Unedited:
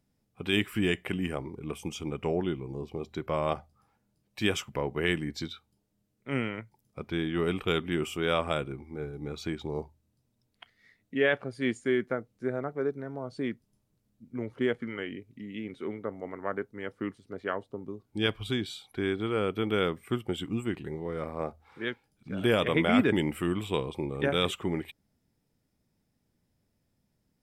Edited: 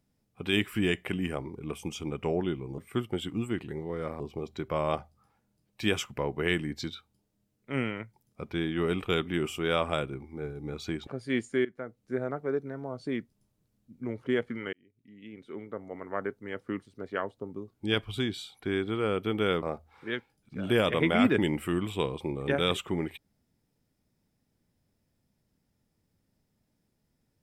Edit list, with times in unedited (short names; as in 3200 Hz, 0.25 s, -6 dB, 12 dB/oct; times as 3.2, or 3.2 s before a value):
9.65–11.39 cut
11.97–12.47 fade in, from -18 dB
15.05–16.54 fade in
19.94–21.36 move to 2.78